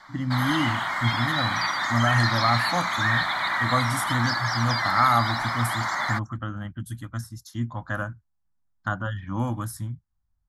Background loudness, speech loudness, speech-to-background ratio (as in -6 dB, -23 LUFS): -25.0 LUFS, -28.0 LUFS, -3.0 dB